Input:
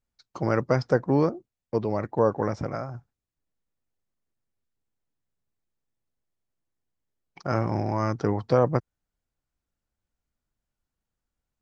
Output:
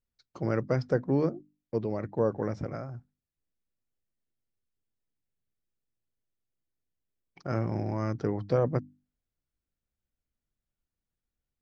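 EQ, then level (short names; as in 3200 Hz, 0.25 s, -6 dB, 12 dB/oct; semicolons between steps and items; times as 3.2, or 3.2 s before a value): bell 950 Hz -7.5 dB 1.2 oct; high shelf 3500 Hz -7.5 dB; notches 50/100/150/200/250/300 Hz; -2.5 dB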